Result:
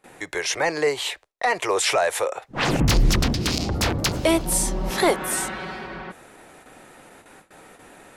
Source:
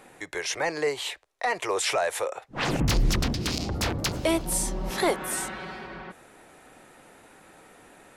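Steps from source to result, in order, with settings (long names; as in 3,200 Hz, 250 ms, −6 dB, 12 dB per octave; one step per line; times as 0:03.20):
noise gate with hold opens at −42 dBFS
level +5 dB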